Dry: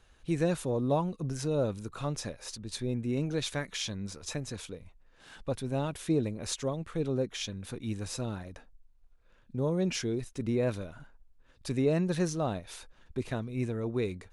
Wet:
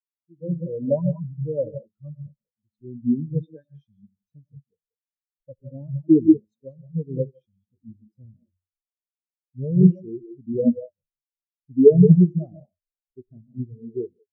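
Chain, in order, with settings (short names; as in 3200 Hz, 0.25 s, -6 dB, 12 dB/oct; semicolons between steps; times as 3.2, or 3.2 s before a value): non-linear reverb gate 0.22 s rising, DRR 3 dB; AGC gain up to 9 dB; spectral expander 4:1; gain +3.5 dB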